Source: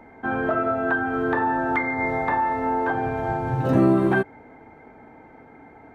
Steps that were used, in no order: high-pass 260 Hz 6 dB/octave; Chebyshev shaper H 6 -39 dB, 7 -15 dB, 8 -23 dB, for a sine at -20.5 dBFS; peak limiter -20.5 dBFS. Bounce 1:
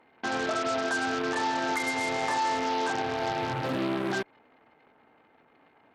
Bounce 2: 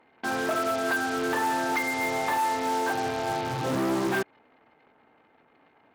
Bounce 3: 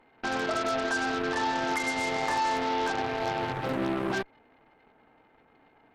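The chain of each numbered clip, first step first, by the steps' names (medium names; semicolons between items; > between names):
peak limiter > Chebyshev shaper > high-pass; Chebyshev shaper > peak limiter > high-pass; peak limiter > high-pass > Chebyshev shaper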